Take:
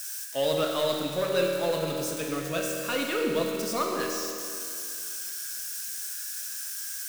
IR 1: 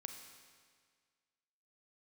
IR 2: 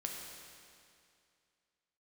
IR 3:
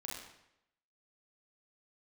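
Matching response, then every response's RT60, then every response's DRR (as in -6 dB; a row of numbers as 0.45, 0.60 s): 2; 1.8, 2.4, 0.80 s; 5.0, 0.0, -4.0 dB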